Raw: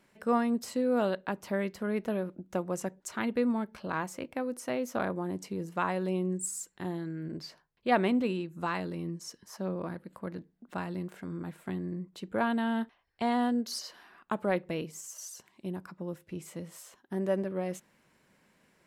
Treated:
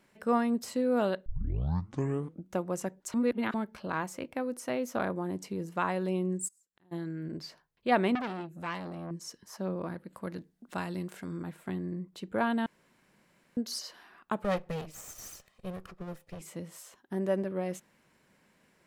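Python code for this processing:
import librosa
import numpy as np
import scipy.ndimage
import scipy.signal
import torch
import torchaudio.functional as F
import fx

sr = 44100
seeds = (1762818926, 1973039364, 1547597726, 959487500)

y = fx.gate_flip(x, sr, shuts_db=-40.0, range_db=-30, at=(6.47, 6.91), fade=0.02)
y = fx.transformer_sat(y, sr, knee_hz=1700.0, at=(8.15, 9.11))
y = fx.peak_eq(y, sr, hz=8600.0, db=7.5, octaves=2.7, at=(10.16, 11.43))
y = fx.lower_of_two(y, sr, delay_ms=1.6, at=(14.44, 16.41))
y = fx.edit(y, sr, fx.tape_start(start_s=1.26, length_s=1.21),
    fx.reverse_span(start_s=3.14, length_s=0.4),
    fx.room_tone_fill(start_s=12.66, length_s=0.91), tone=tone)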